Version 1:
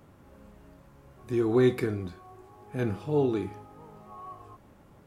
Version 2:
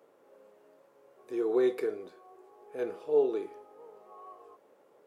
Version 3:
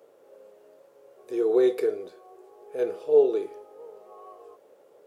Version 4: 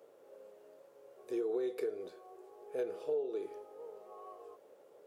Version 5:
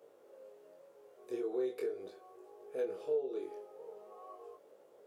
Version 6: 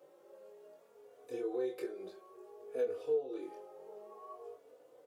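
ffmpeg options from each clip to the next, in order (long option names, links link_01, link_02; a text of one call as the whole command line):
ffmpeg -i in.wav -af "highpass=frequency=460:width_type=q:width=3.8,volume=-8dB" out.wav
ffmpeg -i in.wav -af "equalizer=frequency=125:width_type=o:width=1:gain=-3,equalizer=frequency=250:width_type=o:width=1:gain=-7,equalizer=frequency=500:width_type=o:width=1:gain=4,equalizer=frequency=1000:width_type=o:width=1:gain=-6,equalizer=frequency=2000:width_type=o:width=1:gain=-4,volume=6.5dB" out.wav
ffmpeg -i in.wav -af "acompressor=threshold=-28dB:ratio=12,volume=-4dB" out.wav
ffmpeg -i in.wav -af "flanger=delay=19.5:depth=5:speed=0.4,volume=2dB" out.wav
ffmpeg -i in.wav -filter_complex "[0:a]asplit=2[link_01][link_02];[link_02]adelay=3.4,afreqshift=0.57[link_03];[link_01][link_03]amix=inputs=2:normalize=1,volume=3.5dB" out.wav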